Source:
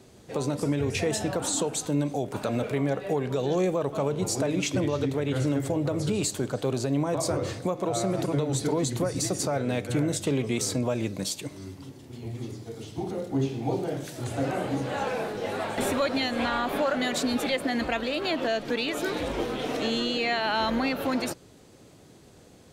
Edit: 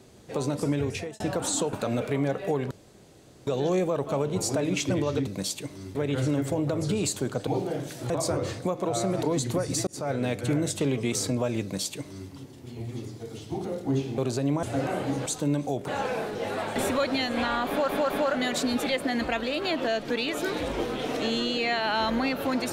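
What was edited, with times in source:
0.8–1.2 fade out
1.73–2.35 move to 14.9
3.33 insert room tone 0.76 s
6.65–7.1 swap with 13.64–14.27
8.23–8.69 cut
9.33–9.59 fade in
11.08–11.76 copy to 5.13
16.7 stutter 0.21 s, 3 plays

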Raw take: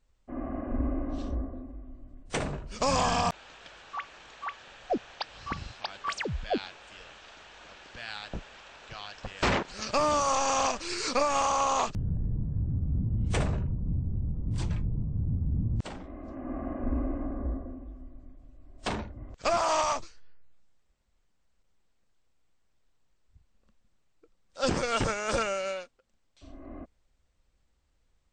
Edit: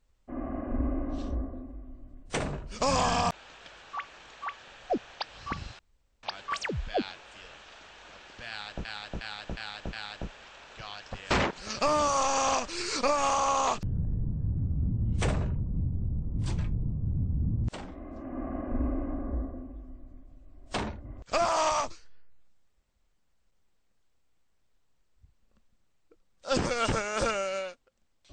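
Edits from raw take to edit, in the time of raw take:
5.79 insert room tone 0.44 s
8.05–8.41 loop, 5 plays

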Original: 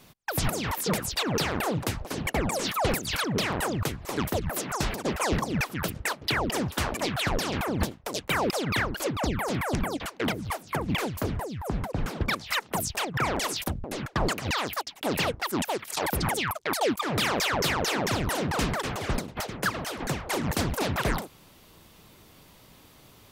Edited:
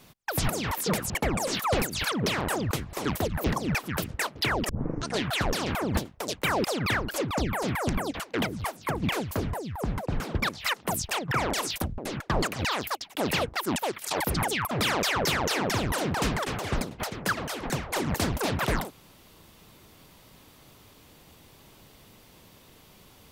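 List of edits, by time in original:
1.1–2.22 cut
4.56–5.3 cut
6.55 tape start 0.61 s
16.57–17.08 cut

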